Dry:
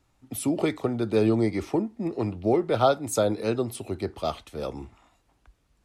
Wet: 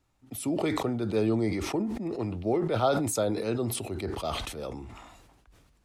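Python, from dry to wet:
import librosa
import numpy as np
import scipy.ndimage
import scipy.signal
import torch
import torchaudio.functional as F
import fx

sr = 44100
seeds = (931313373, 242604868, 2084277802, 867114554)

y = fx.sustainer(x, sr, db_per_s=37.0)
y = y * librosa.db_to_amplitude(-5.0)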